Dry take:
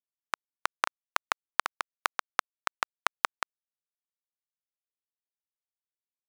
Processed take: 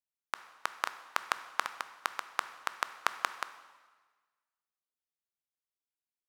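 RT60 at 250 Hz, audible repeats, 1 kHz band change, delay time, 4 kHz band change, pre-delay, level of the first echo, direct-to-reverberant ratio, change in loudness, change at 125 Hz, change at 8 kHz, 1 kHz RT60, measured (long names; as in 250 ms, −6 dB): 1.4 s, no echo audible, −4.0 dB, no echo audible, −4.0 dB, 7 ms, no echo audible, 11.0 dB, −4.0 dB, can't be measured, −4.0 dB, 1.4 s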